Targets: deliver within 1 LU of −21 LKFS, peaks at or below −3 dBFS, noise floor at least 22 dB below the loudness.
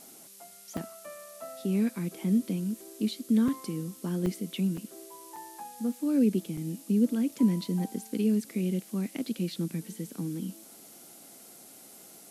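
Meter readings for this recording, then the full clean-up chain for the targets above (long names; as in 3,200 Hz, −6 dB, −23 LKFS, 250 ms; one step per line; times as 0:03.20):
number of dropouts 6; longest dropout 4.2 ms; background noise floor −51 dBFS; target noise floor −53 dBFS; integrated loudness −30.5 LKFS; sample peak −14.5 dBFS; target loudness −21.0 LKFS
→ repair the gap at 0:00.77/0:03.48/0:04.26/0:04.77/0:05.36/0:06.57, 4.2 ms
broadband denoise 6 dB, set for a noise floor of −51 dBFS
level +9.5 dB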